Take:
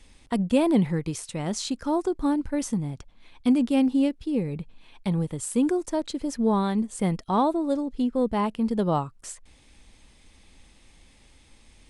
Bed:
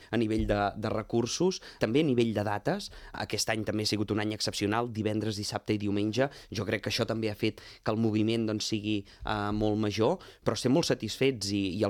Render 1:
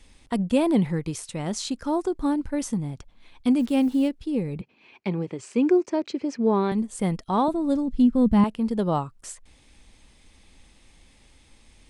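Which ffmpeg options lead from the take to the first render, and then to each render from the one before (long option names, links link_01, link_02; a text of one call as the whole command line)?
ffmpeg -i in.wav -filter_complex "[0:a]asplit=3[link_01][link_02][link_03];[link_01]afade=type=out:start_time=3.58:duration=0.02[link_04];[link_02]acrusher=bits=7:mix=0:aa=0.5,afade=type=in:start_time=3.58:duration=0.02,afade=type=out:start_time=4.07:duration=0.02[link_05];[link_03]afade=type=in:start_time=4.07:duration=0.02[link_06];[link_04][link_05][link_06]amix=inputs=3:normalize=0,asettb=1/sr,asplit=3[link_07][link_08][link_09];[link_07]atrim=end=4.614[link_10];[link_08]atrim=start=4.61:end=6.72,asetpts=PTS-STARTPTS,afade=type=in:duration=0.004:curve=qsin,afade=type=out:start_time=2.106:duration=0.004:curve=qsin,highpass=frequency=120:width=0.5412,highpass=frequency=120:width=1.3066,equalizer=frequency=150:width_type=q:width=4:gain=-7,equalizer=frequency=380:width_type=q:width=4:gain=8,equalizer=frequency=2400:width_type=q:width=4:gain=8,equalizer=frequency=3600:width_type=q:width=4:gain=-6,lowpass=frequency=5900:width=0.5412,lowpass=frequency=5900:width=1.3066[link_11];[link_09]atrim=start=6.716[link_12];[link_10][link_11]acrossfade=duration=0.004:curve1=hsin:curve2=qsin[link_13];[link_13][link_12]acrossfade=duration=0.004:curve1=qsin:curve2=hsin,asettb=1/sr,asplit=3[link_14][link_15][link_16];[link_14]atrim=end=7.484[link_17];[link_15]atrim=start=7.48:end=8.44,asetpts=PTS-STARTPTS,afade=type=in:duration=0.004:curve=qsin,afade=type=out:start_time=0.956:duration=0.004:curve=qsin,lowshelf=frequency=270:width_type=q:width=1.5:gain=10[link_18];[link_16]atrim=start=8.436[link_19];[link_17][link_18]acrossfade=duration=0.004:curve1=hsin:curve2=qsin[link_20];[link_20][link_19]acrossfade=duration=0.004:curve1=qsin:curve2=hsin" out.wav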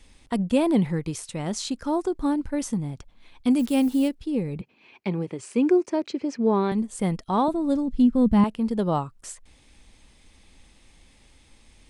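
ffmpeg -i in.wav -filter_complex "[0:a]asettb=1/sr,asplit=3[link_01][link_02][link_03];[link_01]atrim=end=3.504[link_04];[link_02]atrim=start=3.5:end=4.15,asetpts=PTS-STARTPTS,afade=type=in:duration=0.004:curve=qsin,afade=type=out:start_time=0.646:duration=0.004:curve=qsin,highshelf=frequency=6800:gain=11[link_05];[link_03]atrim=start=4.146[link_06];[link_04][link_05]acrossfade=duration=0.004:curve1=hsin:curve2=qsin[link_07];[link_07][link_06]acrossfade=duration=0.004:curve1=qsin:curve2=hsin,asettb=1/sr,asplit=3[link_08][link_09][link_10];[link_08]atrim=end=5.104[link_11];[link_09]atrim=start=5.1:end=6.07,asetpts=PTS-STARTPTS,afade=type=in:duration=0.004:curve=qsin,afade=type=out:start_time=0.966:duration=0.004:curve=qsin,equalizer=frequency=9700:width=4.9:gain=12[link_12];[link_10]atrim=start=6.066[link_13];[link_11][link_12]acrossfade=duration=0.004:curve1=hsin:curve2=qsin[link_14];[link_14][link_13]acrossfade=duration=0.004:curve1=qsin:curve2=hsin" out.wav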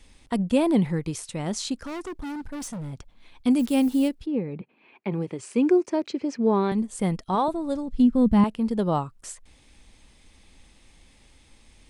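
ffmpeg -i in.wav -filter_complex "[0:a]asettb=1/sr,asplit=3[link_01][link_02][link_03];[link_01]atrim=end=1.774[link_04];[link_02]atrim=start=1.77:end=2.93,asetpts=PTS-STARTPTS,afade=type=in:duration=0.004:curve=qsin,afade=type=out:start_time=1.156:duration=0.004:curve=qsin,asoftclip=type=hard:threshold=-31.5dB[link_05];[link_03]atrim=start=2.926[link_06];[link_04][link_05]acrossfade=duration=0.004:curve1=hsin:curve2=qsin[link_07];[link_07][link_06]acrossfade=duration=0.004:curve1=qsin:curve2=hsin,asplit=3[link_08][link_09][link_10];[link_08]afade=type=out:start_time=4.25:duration=0.02[link_11];[link_09]highpass=170,lowpass=2400,afade=type=in:start_time=4.25:duration=0.02,afade=type=out:start_time=5.11:duration=0.02[link_12];[link_10]afade=type=in:start_time=5.11:duration=0.02[link_13];[link_11][link_12][link_13]amix=inputs=3:normalize=0,asettb=1/sr,asplit=3[link_14][link_15][link_16];[link_14]atrim=end=7.354[link_17];[link_15]atrim=start=7.35:end=8,asetpts=PTS-STARTPTS,afade=type=in:duration=0.004:curve=qsin,afade=type=out:start_time=0.646:duration=0.004:curve=qsin,equalizer=frequency=250:width_type=o:width=0.77:gain=-7.5[link_18];[link_16]atrim=start=7.996[link_19];[link_17][link_18]acrossfade=duration=0.004:curve1=hsin:curve2=qsin[link_20];[link_20][link_19]acrossfade=duration=0.004:curve1=qsin:curve2=hsin" out.wav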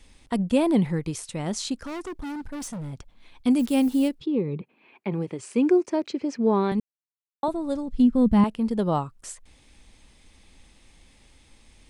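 ffmpeg -i in.wav -filter_complex "[0:a]asettb=1/sr,asplit=3[link_01][link_02][link_03];[link_01]atrim=end=4.204[link_04];[link_02]atrim=start=4.2:end=4.6,asetpts=PTS-STARTPTS,afade=type=in:duration=0.004:curve=qsin,afade=type=out:start_time=0.396:duration=0.004:curve=qsin,highpass=130,equalizer=frequency=140:width_type=q:width=4:gain=9,equalizer=frequency=380:width_type=q:width=4:gain=9,equalizer=frequency=700:width_type=q:width=4:gain=-8,equalizer=frequency=1100:width_type=q:width=4:gain=6,equalizer=frequency=1600:width_type=q:width=4:gain=-8,equalizer=frequency=3600:width_type=q:width=4:gain=9,lowpass=frequency=7600:width=0.5412,lowpass=frequency=7600:width=1.3066[link_05];[link_03]atrim=start=4.596[link_06];[link_04][link_05]acrossfade=duration=0.004:curve1=hsin:curve2=qsin[link_07];[link_07][link_06]acrossfade=duration=0.004:curve1=qsin:curve2=hsin,asplit=3[link_08][link_09][link_10];[link_08]atrim=end=6.8,asetpts=PTS-STARTPTS,afade=type=out:start_time=6.796:duration=0.004:curve=hsin[link_11];[link_09]atrim=start=6.8:end=7.43,asetpts=PTS-STARTPTS,volume=0[link_12];[link_10]atrim=start=7.43,asetpts=PTS-STARTPTS,afade=type=in:duration=0.004:curve=hsin[link_13];[link_11][link_12][link_13]concat=n=3:v=0:a=1" out.wav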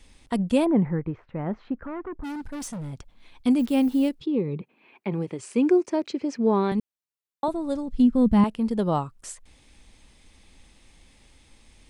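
ffmpeg -i in.wav -filter_complex "[0:a]asplit=3[link_01][link_02][link_03];[link_01]afade=type=out:start_time=0.64:duration=0.02[link_04];[link_02]lowpass=frequency=1800:width=0.5412,lowpass=frequency=1800:width=1.3066,afade=type=in:start_time=0.64:duration=0.02,afade=type=out:start_time=2.23:duration=0.02[link_05];[link_03]afade=type=in:start_time=2.23:duration=0.02[link_06];[link_04][link_05][link_06]amix=inputs=3:normalize=0,asettb=1/sr,asplit=3[link_07][link_08][link_09];[link_07]atrim=end=3.544[link_10];[link_08]atrim=start=3.54:end=4.08,asetpts=PTS-STARTPTS,afade=type=in:duration=0.004:curve=qsin,afade=type=out:start_time=0.536:duration=0.004:curve=qsin,equalizer=frequency=8900:width_type=o:width=1.6:gain=-7.5[link_11];[link_09]atrim=start=4.076[link_12];[link_10][link_11]acrossfade=duration=0.004:curve1=hsin:curve2=qsin[link_13];[link_13][link_12]acrossfade=duration=0.004:curve1=qsin:curve2=hsin" out.wav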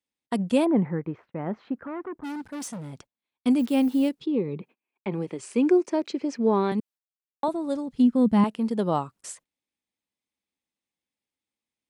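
ffmpeg -i in.wav -af "highpass=170,agate=range=-33dB:threshold=-49dB:ratio=16:detection=peak" out.wav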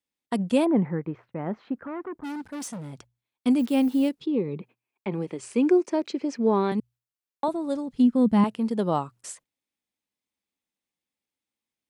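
ffmpeg -i in.wav -af "bandreject=frequency=60:width_type=h:width=6,bandreject=frequency=120:width_type=h:width=6" out.wav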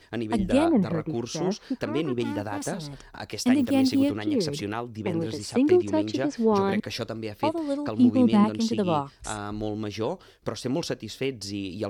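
ffmpeg -i in.wav -i bed.wav -filter_complex "[1:a]volume=-2.5dB[link_01];[0:a][link_01]amix=inputs=2:normalize=0" out.wav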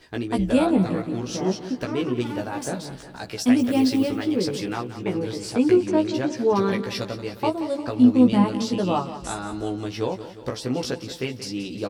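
ffmpeg -i in.wav -filter_complex "[0:a]asplit=2[link_01][link_02];[link_02]adelay=16,volume=-3dB[link_03];[link_01][link_03]amix=inputs=2:normalize=0,aecho=1:1:178|356|534|712|890|1068:0.224|0.125|0.0702|0.0393|0.022|0.0123" out.wav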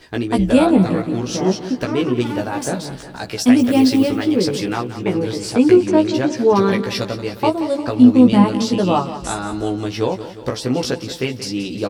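ffmpeg -i in.wav -af "volume=6.5dB,alimiter=limit=-1dB:level=0:latency=1" out.wav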